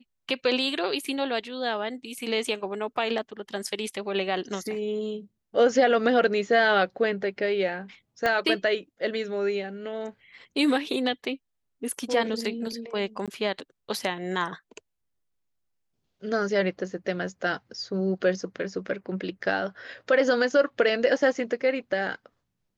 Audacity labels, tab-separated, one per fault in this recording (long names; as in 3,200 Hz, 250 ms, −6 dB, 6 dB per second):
8.260000	8.260000	click −12 dBFS
13.260000	13.280000	drop-out 17 ms